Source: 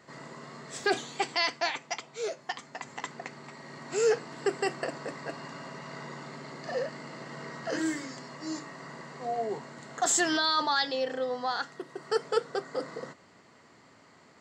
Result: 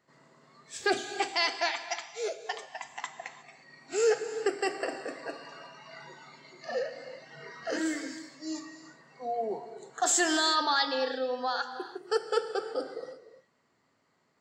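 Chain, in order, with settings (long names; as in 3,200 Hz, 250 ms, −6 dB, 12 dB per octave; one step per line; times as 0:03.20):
noise reduction from a noise print of the clip's start 15 dB
reverb whose tail is shaped and stops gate 380 ms flat, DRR 9 dB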